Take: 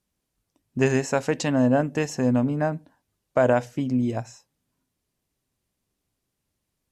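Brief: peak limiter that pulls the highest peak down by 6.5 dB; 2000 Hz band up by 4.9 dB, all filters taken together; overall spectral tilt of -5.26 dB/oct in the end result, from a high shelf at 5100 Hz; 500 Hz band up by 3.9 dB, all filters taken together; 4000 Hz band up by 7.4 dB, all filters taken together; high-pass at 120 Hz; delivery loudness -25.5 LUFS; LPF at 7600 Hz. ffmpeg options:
-af "highpass=120,lowpass=7.6k,equalizer=f=500:t=o:g=4.5,equalizer=f=2k:t=o:g=4,equalizer=f=4k:t=o:g=6,highshelf=f=5.1k:g=6.5,volume=-2.5dB,alimiter=limit=-12dB:level=0:latency=1"

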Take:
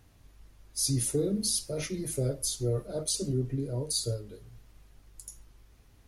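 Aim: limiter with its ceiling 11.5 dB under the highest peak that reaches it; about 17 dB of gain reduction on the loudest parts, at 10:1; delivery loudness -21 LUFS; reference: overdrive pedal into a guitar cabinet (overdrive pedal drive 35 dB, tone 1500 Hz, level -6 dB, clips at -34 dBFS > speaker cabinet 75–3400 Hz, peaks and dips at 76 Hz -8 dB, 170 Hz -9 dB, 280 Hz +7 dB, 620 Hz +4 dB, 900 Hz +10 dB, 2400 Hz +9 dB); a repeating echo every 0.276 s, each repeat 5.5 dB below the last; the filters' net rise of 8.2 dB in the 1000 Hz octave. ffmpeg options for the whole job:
-filter_complex "[0:a]equalizer=f=1k:t=o:g=3.5,acompressor=threshold=-42dB:ratio=10,alimiter=level_in=15dB:limit=-24dB:level=0:latency=1,volume=-15dB,aecho=1:1:276|552|828|1104|1380|1656|1932:0.531|0.281|0.149|0.079|0.0419|0.0222|0.0118,asplit=2[a][b];[b]highpass=f=720:p=1,volume=35dB,asoftclip=type=tanh:threshold=-34dB[c];[a][c]amix=inputs=2:normalize=0,lowpass=f=1.5k:p=1,volume=-6dB,highpass=75,equalizer=f=76:t=q:w=4:g=-8,equalizer=f=170:t=q:w=4:g=-9,equalizer=f=280:t=q:w=4:g=7,equalizer=f=620:t=q:w=4:g=4,equalizer=f=900:t=q:w=4:g=10,equalizer=f=2.4k:t=q:w=4:g=9,lowpass=f=3.4k:w=0.5412,lowpass=f=3.4k:w=1.3066,volume=21dB"

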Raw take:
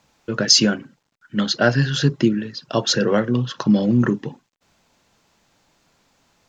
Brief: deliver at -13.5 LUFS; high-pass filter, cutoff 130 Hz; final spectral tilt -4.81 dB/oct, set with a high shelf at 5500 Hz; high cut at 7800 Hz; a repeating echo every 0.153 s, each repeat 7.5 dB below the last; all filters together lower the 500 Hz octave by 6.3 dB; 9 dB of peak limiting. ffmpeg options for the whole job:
-af "highpass=130,lowpass=7.8k,equalizer=f=500:t=o:g=-8,highshelf=f=5.5k:g=-5.5,alimiter=limit=-13.5dB:level=0:latency=1,aecho=1:1:153|306|459|612|765:0.422|0.177|0.0744|0.0312|0.0131,volume=10.5dB"

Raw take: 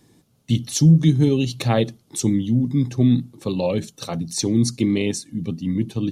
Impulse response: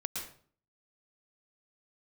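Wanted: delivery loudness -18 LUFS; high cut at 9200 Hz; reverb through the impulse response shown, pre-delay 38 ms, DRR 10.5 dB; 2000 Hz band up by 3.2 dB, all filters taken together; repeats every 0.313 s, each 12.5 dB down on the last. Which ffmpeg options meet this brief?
-filter_complex "[0:a]lowpass=9.2k,equalizer=f=2k:t=o:g=4,aecho=1:1:313|626|939:0.237|0.0569|0.0137,asplit=2[a][b];[1:a]atrim=start_sample=2205,adelay=38[c];[b][c]afir=irnorm=-1:irlink=0,volume=-12dB[d];[a][d]amix=inputs=2:normalize=0,volume=2dB"

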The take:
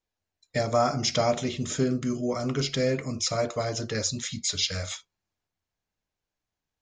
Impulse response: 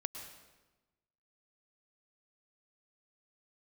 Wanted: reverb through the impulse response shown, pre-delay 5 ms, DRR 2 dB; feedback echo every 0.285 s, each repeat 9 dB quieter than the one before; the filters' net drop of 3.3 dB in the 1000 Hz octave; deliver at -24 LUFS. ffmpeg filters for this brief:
-filter_complex "[0:a]equalizer=f=1k:t=o:g=-5.5,aecho=1:1:285|570|855|1140:0.355|0.124|0.0435|0.0152,asplit=2[a][b];[1:a]atrim=start_sample=2205,adelay=5[c];[b][c]afir=irnorm=-1:irlink=0,volume=-1.5dB[d];[a][d]amix=inputs=2:normalize=0,volume=1.5dB"

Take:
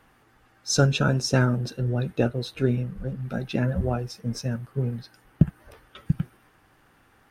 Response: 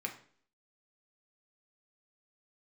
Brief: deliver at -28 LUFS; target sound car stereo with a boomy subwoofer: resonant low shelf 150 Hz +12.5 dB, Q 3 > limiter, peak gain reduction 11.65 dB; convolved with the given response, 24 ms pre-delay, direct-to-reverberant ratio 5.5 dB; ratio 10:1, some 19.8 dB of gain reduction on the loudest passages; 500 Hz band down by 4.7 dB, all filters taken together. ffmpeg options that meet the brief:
-filter_complex "[0:a]equalizer=f=500:t=o:g=-4,acompressor=threshold=-34dB:ratio=10,asplit=2[a][b];[1:a]atrim=start_sample=2205,adelay=24[c];[b][c]afir=irnorm=-1:irlink=0,volume=-7dB[d];[a][d]amix=inputs=2:normalize=0,lowshelf=f=150:t=q:w=3:g=12.5,volume=3dB,alimiter=limit=-20dB:level=0:latency=1"

